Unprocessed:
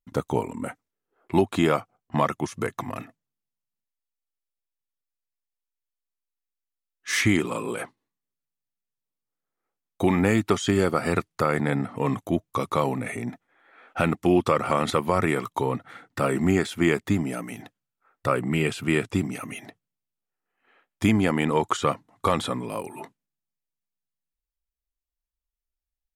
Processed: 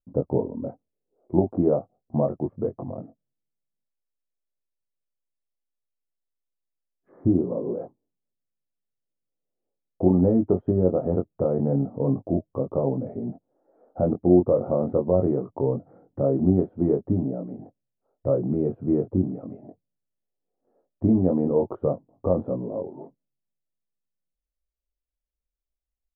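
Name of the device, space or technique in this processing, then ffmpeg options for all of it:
under water: -filter_complex "[0:a]asettb=1/sr,asplit=3[link_01][link_02][link_03];[link_01]atrim=end=7.094[link_04];[link_02]atrim=start=7.09:end=7.77,asetpts=PTS-STARTPTS,afade=type=in:duration=0.004:curve=qsin,afade=type=out:start_time=0.676:duration=0.004:curve=qsin,lowpass=frequency=1300:width=0.5412,lowpass=frequency=1300:width=1.3066[link_05];[link_03]atrim=start=7.766[link_06];[link_04][link_05]acrossfade=duration=0.004:curve1=hsin:curve2=qsin[link_07];[link_07][link_06]acrossfade=duration=0.004:curve1=qsin:curve2=hsin,lowpass=frequency=630:width=0.5412,lowpass=frequency=630:width=1.3066,equalizer=frequency=580:width_type=o:width=0.47:gain=5,asplit=2[link_08][link_09];[link_09]adelay=22,volume=-4.5dB[link_10];[link_08][link_10]amix=inputs=2:normalize=0"

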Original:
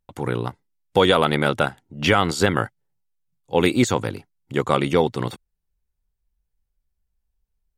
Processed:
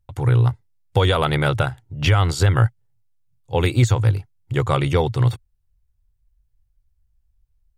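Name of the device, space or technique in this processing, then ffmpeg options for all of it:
car stereo with a boomy subwoofer: -af "lowshelf=frequency=150:width_type=q:width=3:gain=10,alimiter=limit=-6dB:level=0:latency=1:release=147"

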